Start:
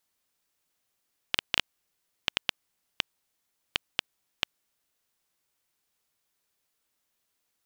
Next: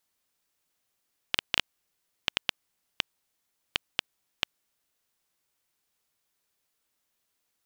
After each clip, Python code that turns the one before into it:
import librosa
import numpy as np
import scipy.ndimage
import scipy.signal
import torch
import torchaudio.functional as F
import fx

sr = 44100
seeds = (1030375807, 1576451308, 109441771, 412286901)

y = x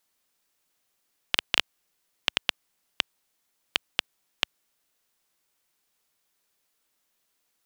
y = fx.peak_eq(x, sr, hz=81.0, db=-6.5, octaves=1.4)
y = F.gain(torch.from_numpy(y), 3.5).numpy()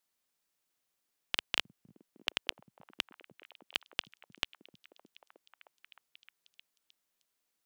y = fx.echo_stepped(x, sr, ms=309, hz=160.0, octaves=0.7, feedback_pct=70, wet_db=-5.0)
y = F.gain(torch.from_numpy(y), -8.0).numpy()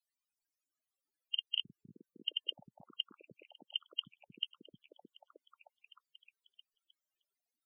y = fx.spec_topn(x, sr, count=16)
y = F.gain(torch.from_numpy(y), 3.5).numpy()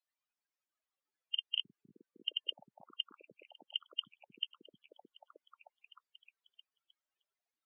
y = fx.bandpass_q(x, sr, hz=1200.0, q=0.54)
y = F.gain(torch.from_numpy(y), 3.5).numpy()